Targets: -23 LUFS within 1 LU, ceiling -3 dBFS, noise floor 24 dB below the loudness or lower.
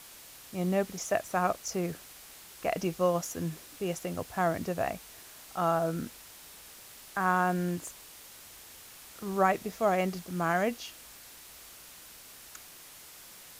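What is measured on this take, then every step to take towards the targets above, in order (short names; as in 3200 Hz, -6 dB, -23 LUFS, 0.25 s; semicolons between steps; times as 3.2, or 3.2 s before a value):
noise floor -51 dBFS; noise floor target -56 dBFS; loudness -31.5 LUFS; peak -12.0 dBFS; loudness target -23.0 LUFS
-> denoiser 6 dB, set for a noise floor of -51 dBFS; gain +8.5 dB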